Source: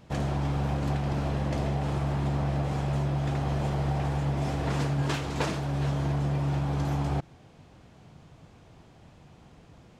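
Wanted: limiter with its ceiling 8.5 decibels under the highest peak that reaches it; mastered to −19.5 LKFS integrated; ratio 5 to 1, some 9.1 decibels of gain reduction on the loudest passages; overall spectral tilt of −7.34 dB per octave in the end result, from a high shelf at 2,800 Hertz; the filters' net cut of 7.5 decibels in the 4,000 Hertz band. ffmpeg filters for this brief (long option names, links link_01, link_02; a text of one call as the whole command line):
ffmpeg -i in.wav -af "highshelf=frequency=2800:gain=-5,equalizer=frequency=4000:width_type=o:gain=-6,acompressor=threshold=-35dB:ratio=5,volume=21dB,alimiter=limit=-11dB:level=0:latency=1" out.wav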